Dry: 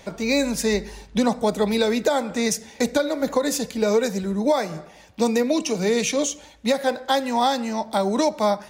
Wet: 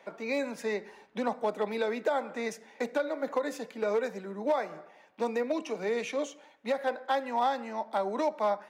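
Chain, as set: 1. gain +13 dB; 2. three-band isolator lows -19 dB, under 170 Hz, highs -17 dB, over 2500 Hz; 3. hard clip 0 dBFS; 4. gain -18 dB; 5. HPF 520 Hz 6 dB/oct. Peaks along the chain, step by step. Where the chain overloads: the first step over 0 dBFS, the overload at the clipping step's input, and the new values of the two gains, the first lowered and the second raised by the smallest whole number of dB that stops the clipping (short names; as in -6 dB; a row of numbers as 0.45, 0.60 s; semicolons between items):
+5.0, +4.0, 0.0, -18.0, -16.5 dBFS; step 1, 4.0 dB; step 1 +9 dB, step 4 -14 dB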